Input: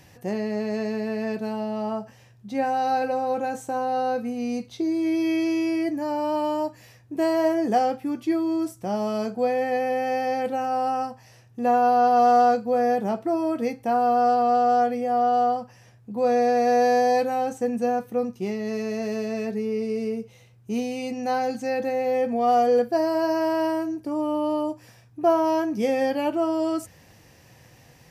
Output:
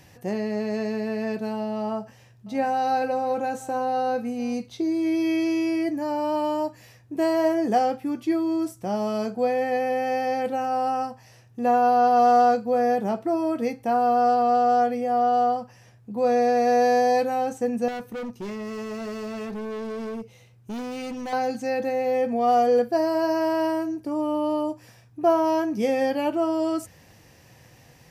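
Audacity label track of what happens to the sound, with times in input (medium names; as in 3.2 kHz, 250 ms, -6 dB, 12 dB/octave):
1.760000	4.540000	delay 702 ms -20.5 dB
17.880000	21.330000	hard clipper -30 dBFS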